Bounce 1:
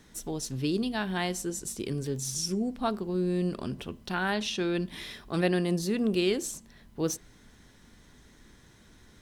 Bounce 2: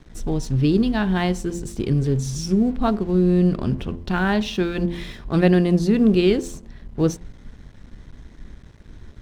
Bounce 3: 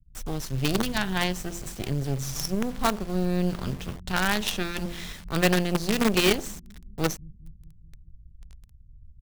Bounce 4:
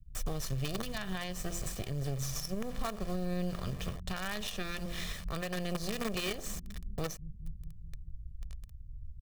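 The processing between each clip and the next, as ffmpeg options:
ffmpeg -i in.wav -af "aemphasis=mode=reproduction:type=bsi,aeval=exprs='sgn(val(0))*max(abs(val(0))-0.00251,0)':channel_layout=same,bandreject=frequency=86.14:width_type=h:width=4,bandreject=frequency=172.28:width_type=h:width=4,bandreject=frequency=258.42:width_type=h:width=4,bandreject=frequency=344.56:width_type=h:width=4,bandreject=frequency=430.7:width_type=h:width=4,bandreject=frequency=516.84:width_type=h:width=4,bandreject=frequency=602.98:width_type=h:width=4,bandreject=frequency=689.12:width_type=h:width=4,bandreject=frequency=775.26:width_type=h:width=4,bandreject=frequency=861.4:width_type=h:width=4,bandreject=frequency=947.54:width_type=h:width=4,bandreject=frequency=1033.68:width_type=h:width=4,volume=7dB" out.wav
ffmpeg -i in.wav -filter_complex "[0:a]tiltshelf=frequency=890:gain=-6,acrossover=split=140[link_01][link_02];[link_01]aecho=1:1:207|414|621|828|1035|1242|1449:0.398|0.231|0.134|0.0777|0.0451|0.0261|0.0152[link_03];[link_02]acrusher=bits=4:dc=4:mix=0:aa=0.000001[link_04];[link_03][link_04]amix=inputs=2:normalize=0,volume=-1.5dB" out.wav
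ffmpeg -i in.wav -af "aecho=1:1:1.7:0.46,acompressor=threshold=-26dB:ratio=6,alimiter=level_in=1.5dB:limit=-24dB:level=0:latency=1:release=407,volume=-1.5dB,volume=1.5dB" out.wav

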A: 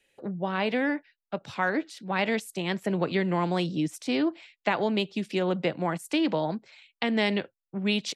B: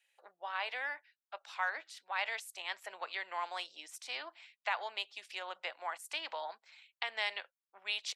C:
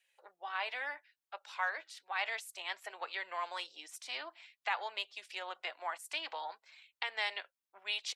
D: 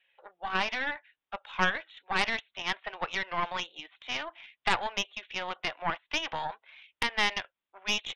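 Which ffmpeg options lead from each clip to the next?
ffmpeg -i in.wav -af "highpass=frequency=780:width=0.5412,highpass=frequency=780:width=1.3066,volume=-6dB" out.wav
ffmpeg -i in.wav -af "flanger=delay=1.7:depth=1.6:regen=-47:speed=0.59:shape=triangular,volume=4dB" out.wav
ffmpeg -i in.wav -af "aresample=8000,aresample=44100,aeval=exprs='0.106*(cos(1*acos(clip(val(0)/0.106,-1,1)))-cos(1*PI/2))+0.0299*(cos(4*acos(clip(val(0)/0.106,-1,1)))-cos(4*PI/2))':channel_layout=same,volume=7dB" out.wav

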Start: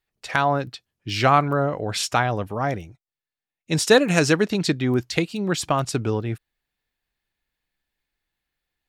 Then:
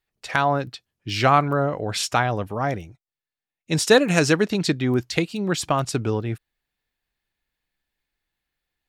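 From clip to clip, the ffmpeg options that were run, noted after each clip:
ffmpeg -i in.wav -af anull out.wav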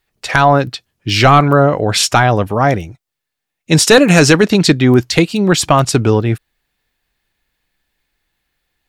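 ffmpeg -i in.wav -af "apsyclip=13.5dB,volume=-1.5dB" out.wav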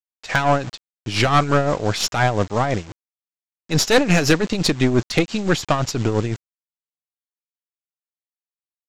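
ffmpeg -i in.wav -af "aresample=16000,acrusher=bits=4:mix=0:aa=0.000001,aresample=44100,aeval=exprs='(tanh(2.24*val(0)+0.6)-tanh(0.6))/2.24':channel_layout=same,tremolo=f=5.8:d=0.61,volume=-1.5dB" out.wav

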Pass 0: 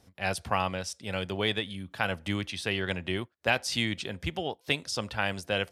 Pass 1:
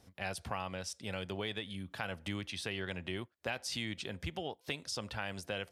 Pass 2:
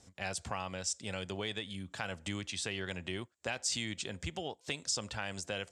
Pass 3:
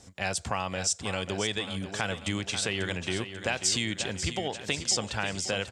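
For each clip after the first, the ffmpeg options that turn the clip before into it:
ffmpeg -i in.wav -filter_complex "[0:a]asplit=2[link_01][link_02];[link_02]alimiter=limit=-20.5dB:level=0:latency=1:release=67,volume=-1dB[link_03];[link_01][link_03]amix=inputs=2:normalize=0,acompressor=threshold=-32dB:ratio=2,volume=-7dB" out.wav
ffmpeg -i in.wav -af "lowpass=frequency=7500:width_type=q:width=5.1" out.wav
ffmpeg -i in.wav -af "aecho=1:1:541|1082|1623|2164|2705:0.316|0.155|0.0759|0.0372|0.0182,volume=7.5dB" out.wav

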